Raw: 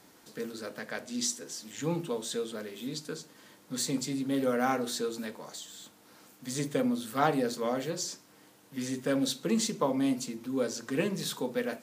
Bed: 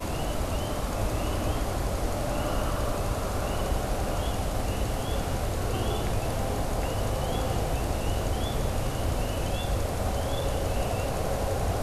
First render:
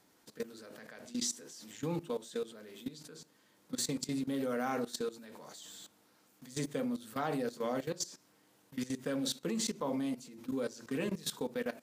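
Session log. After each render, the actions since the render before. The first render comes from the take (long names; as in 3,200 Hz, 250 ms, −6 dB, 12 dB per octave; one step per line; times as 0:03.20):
output level in coarse steps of 17 dB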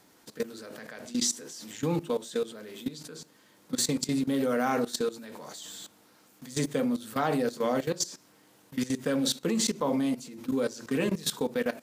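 level +7.5 dB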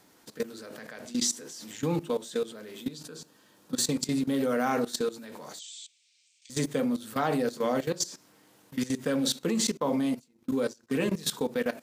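0:02.93–0:03.92: notch filter 2,100 Hz, Q 7.2
0:05.59–0:06.50: Chebyshev band-pass filter 2,300–8,300 Hz, order 4
0:09.77–0:10.90: noise gate −41 dBFS, range −24 dB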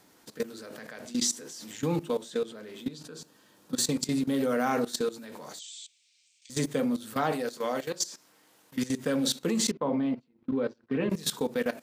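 0:02.23–0:03.17: high-shelf EQ 6,800 Hz −7.5 dB
0:07.32–0:08.76: low-shelf EQ 330 Hz −10.5 dB
0:09.71–0:11.10: high-frequency loss of the air 350 metres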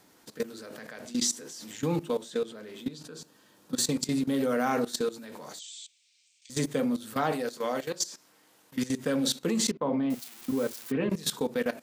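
0:10.10–0:10.92: spike at every zero crossing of −29.5 dBFS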